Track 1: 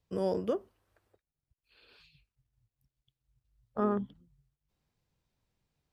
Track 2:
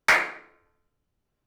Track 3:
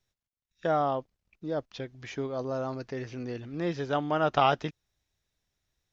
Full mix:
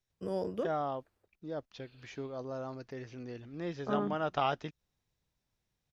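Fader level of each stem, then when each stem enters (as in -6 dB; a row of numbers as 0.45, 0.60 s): -4.0 dB, off, -7.5 dB; 0.10 s, off, 0.00 s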